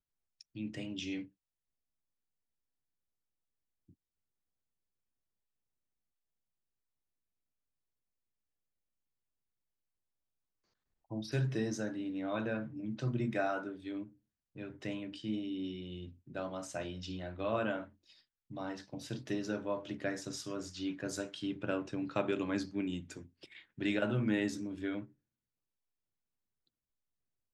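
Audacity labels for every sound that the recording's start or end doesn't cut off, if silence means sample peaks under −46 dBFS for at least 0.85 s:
11.110000	25.050000	sound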